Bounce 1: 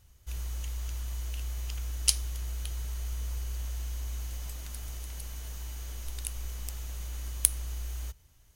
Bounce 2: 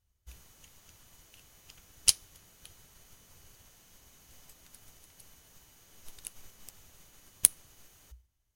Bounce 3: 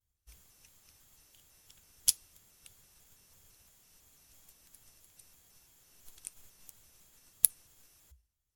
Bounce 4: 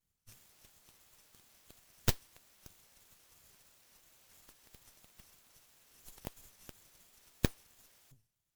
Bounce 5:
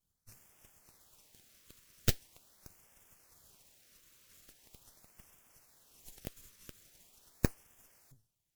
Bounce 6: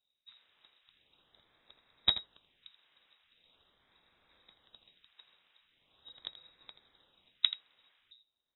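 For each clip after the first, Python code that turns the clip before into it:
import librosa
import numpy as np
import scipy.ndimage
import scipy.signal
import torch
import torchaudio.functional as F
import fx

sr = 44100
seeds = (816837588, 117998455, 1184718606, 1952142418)

y1 = fx.hum_notches(x, sr, base_hz=60, count=2)
y1 = fx.upward_expand(y1, sr, threshold_db=-59.0, expansion=1.5)
y1 = y1 * librosa.db_to_amplitude(2.0)
y2 = fx.peak_eq(y1, sr, hz=12000.0, db=6.5, octaves=1.8)
y2 = fx.vibrato_shape(y2, sr, shape='square', rate_hz=3.0, depth_cents=160.0)
y2 = y2 * librosa.db_to_amplitude(-8.0)
y3 = np.abs(y2)
y3 = fx.tube_stage(y3, sr, drive_db=9.0, bias=0.6)
y3 = y3 * librosa.db_to_amplitude(6.0)
y4 = fx.filter_lfo_notch(y3, sr, shape='sine', hz=0.42, low_hz=740.0, high_hz=4200.0, q=1.3)
y4 = y4 * librosa.db_to_amplitude(1.0)
y5 = fx.freq_invert(y4, sr, carrier_hz=3800)
y5 = y5 + 10.0 ** (-13.5 / 20.0) * np.pad(y5, (int(82 * sr / 1000.0), 0))[:len(y5)]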